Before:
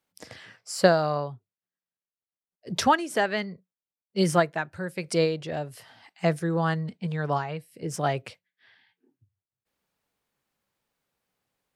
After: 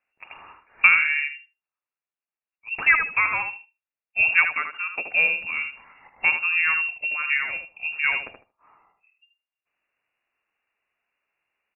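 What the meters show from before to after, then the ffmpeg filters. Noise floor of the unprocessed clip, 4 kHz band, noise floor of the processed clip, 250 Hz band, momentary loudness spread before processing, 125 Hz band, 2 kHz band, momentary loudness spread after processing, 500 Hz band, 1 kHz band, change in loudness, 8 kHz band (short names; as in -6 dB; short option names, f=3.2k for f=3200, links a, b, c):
under -85 dBFS, n/a, under -85 dBFS, under -20 dB, 13 LU, under -20 dB, +14.0 dB, 13 LU, -19.0 dB, -3.5 dB, +6.0 dB, under -40 dB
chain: -filter_complex "[0:a]lowpass=f=2.5k:t=q:w=0.5098,lowpass=f=2.5k:t=q:w=0.6013,lowpass=f=2.5k:t=q:w=0.9,lowpass=f=2.5k:t=q:w=2.563,afreqshift=-2900,asplit=2[a][b];[b]adelay=77,lowpass=f=2k:p=1,volume=-5.5dB,asplit=2[c][d];[d]adelay=77,lowpass=f=2k:p=1,volume=0.19,asplit=2[e][f];[f]adelay=77,lowpass=f=2k:p=1,volume=0.19[g];[a][c][e][g]amix=inputs=4:normalize=0,volume=2.5dB"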